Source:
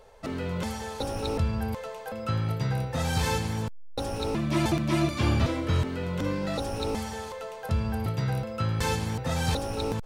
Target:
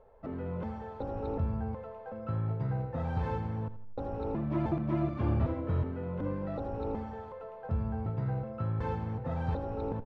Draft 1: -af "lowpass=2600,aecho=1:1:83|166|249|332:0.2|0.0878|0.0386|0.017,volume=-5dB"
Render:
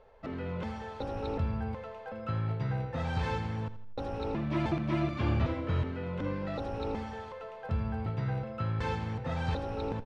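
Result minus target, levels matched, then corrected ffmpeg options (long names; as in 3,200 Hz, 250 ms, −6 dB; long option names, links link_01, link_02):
2,000 Hz band +7.5 dB
-af "lowpass=1100,aecho=1:1:83|166|249|332:0.2|0.0878|0.0386|0.017,volume=-5dB"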